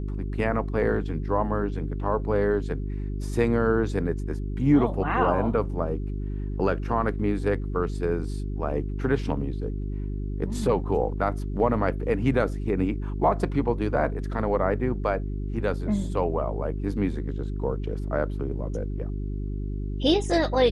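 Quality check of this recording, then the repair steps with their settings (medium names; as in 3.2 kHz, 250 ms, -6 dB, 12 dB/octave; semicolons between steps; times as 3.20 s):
hum 50 Hz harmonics 8 -30 dBFS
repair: de-hum 50 Hz, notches 8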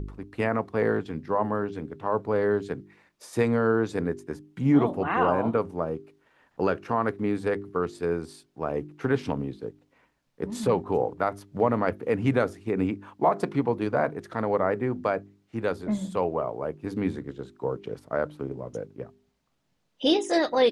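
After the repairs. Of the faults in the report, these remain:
nothing left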